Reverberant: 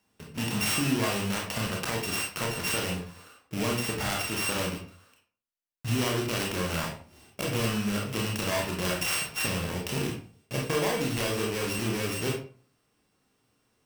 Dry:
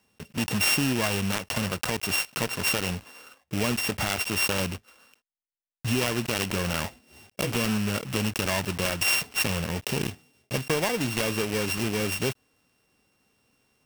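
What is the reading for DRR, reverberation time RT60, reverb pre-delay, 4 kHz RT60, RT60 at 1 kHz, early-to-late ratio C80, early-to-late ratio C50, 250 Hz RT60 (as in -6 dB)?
-1.0 dB, 0.40 s, 24 ms, 0.30 s, 0.40 s, 10.0 dB, 5.5 dB, 0.45 s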